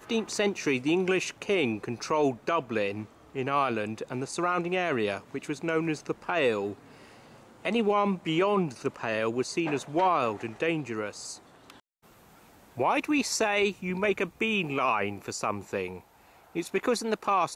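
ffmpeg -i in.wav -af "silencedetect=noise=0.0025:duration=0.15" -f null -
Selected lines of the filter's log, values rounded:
silence_start: 11.80
silence_end: 12.04 | silence_duration: 0.24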